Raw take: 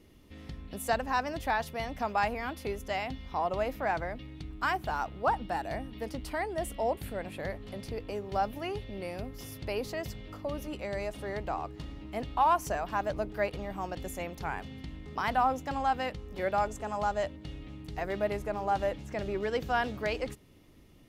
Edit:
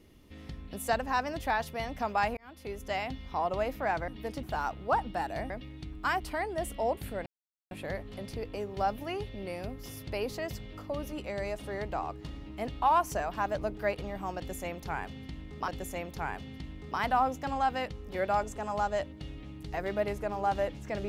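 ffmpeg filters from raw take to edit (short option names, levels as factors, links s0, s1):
-filter_complex "[0:a]asplit=8[s0][s1][s2][s3][s4][s5][s6][s7];[s0]atrim=end=2.37,asetpts=PTS-STARTPTS,afade=t=out:st=2.366:d=0.004:c=hsin[s8];[s1]atrim=start=2.37:end=4.082,asetpts=PTS-STARTPTS,afade=t=in:d=0.54[s9];[s2]atrim=start=5.848:end=6.202[s10];[s3]atrim=start=4.778:end=5.852[s11];[s4]atrim=start=4.078:end=4.782[s12];[s5]atrim=start=6.198:end=7.26,asetpts=PTS-STARTPTS,afade=t=out:st=1.058:d=0.004:c=hsin,apad=pad_dur=0.45[s13];[s6]atrim=start=7.26:end=15.232,asetpts=PTS-STARTPTS,afade=t=in:d=0.004:c=hsin[s14];[s7]atrim=start=13.918[s15];[s8][s9]concat=n=2:v=0:a=1[s16];[s16][s10]acrossfade=d=0.004:c1=hsin:c2=hsin[s17];[s17][s11]acrossfade=d=0.004:c1=hsin:c2=hsin[s18];[s18][s12]acrossfade=d=0.004:c1=hsin:c2=hsin[s19];[s13][s14]concat=n=2:v=0:a=1[s20];[s19][s20]acrossfade=d=0.004:c1=hsin:c2=hsin[s21];[s21][s15]acrossfade=d=0.004:c1=hsin:c2=hsin"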